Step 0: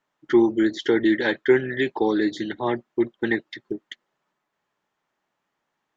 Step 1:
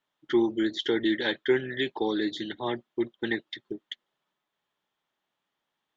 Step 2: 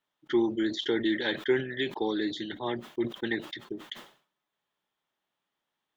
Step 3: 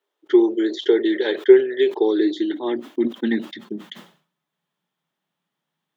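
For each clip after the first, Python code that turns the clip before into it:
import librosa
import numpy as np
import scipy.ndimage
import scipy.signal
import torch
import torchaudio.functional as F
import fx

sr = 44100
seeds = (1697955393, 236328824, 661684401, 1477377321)

y1 = fx.peak_eq(x, sr, hz=3400.0, db=10.0, octaves=0.56)
y1 = F.gain(torch.from_numpy(y1), -6.5).numpy()
y2 = fx.sustainer(y1, sr, db_per_s=130.0)
y2 = F.gain(torch.from_numpy(y2), -2.0).numpy()
y3 = fx.filter_sweep_highpass(y2, sr, from_hz=400.0, to_hz=160.0, start_s=1.92, end_s=4.3, q=5.5)
y3 = F.gain(torch.from_numpy(y3), 2.0).numpy()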